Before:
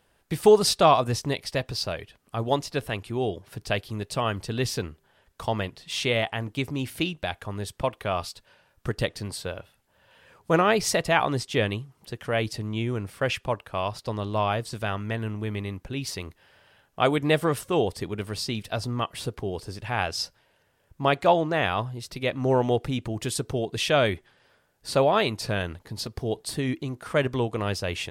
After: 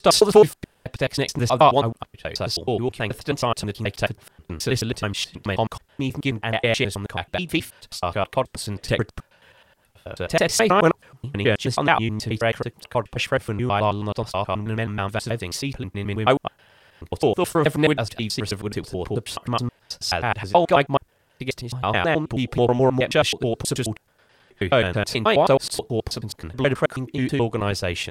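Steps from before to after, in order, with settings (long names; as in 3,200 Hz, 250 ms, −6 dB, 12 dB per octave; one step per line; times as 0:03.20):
slices reordered back to front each 107 ms, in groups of 8
highs frequency-modulated by the lows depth 0.11 ms
level +4.5 dB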